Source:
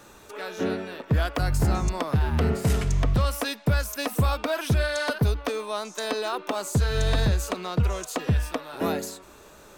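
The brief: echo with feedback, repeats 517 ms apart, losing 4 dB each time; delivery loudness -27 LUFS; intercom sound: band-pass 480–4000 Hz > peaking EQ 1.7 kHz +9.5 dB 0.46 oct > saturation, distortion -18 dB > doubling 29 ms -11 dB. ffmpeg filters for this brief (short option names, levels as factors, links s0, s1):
-filter_complex "[0:a]highpass=480,lowpass=4000,equalizer=f=1700:t=o:w=0.46:g=9.5,aecho=1:1:517|1034|1551|2068|2585|3102|3619|4136|4653:0.631|0.398|0.25|0.158|0.0994|0.0626|0.0394|0.0249|0.0157,asoftclip=threshold=0.112,asplit=2[s0][s1];[s1]adelay=29,volume=0.282[s2];[s0][s2]amix=inputs=2:normalize=0,volume=1.19"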